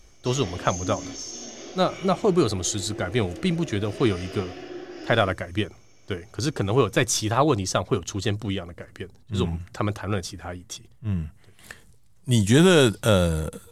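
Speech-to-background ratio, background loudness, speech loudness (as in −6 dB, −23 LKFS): 14.0 dB, −38.0 LKFS, −24.0 LKFS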